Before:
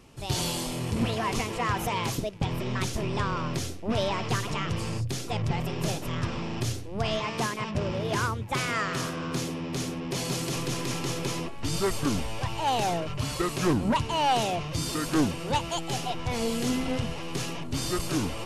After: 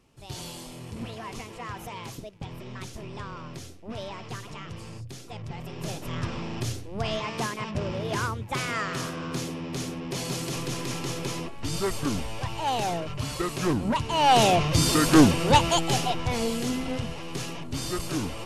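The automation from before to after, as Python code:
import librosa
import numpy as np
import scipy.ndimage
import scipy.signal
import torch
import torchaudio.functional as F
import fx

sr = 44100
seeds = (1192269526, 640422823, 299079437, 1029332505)

y = fx.gain(x, sr, db=fx.line((5.5, -9.5), (6.17, -1.0), (14.02, -1.0), (14.45, 8.5), (15.67, 8.5), (16.72, -1.5)))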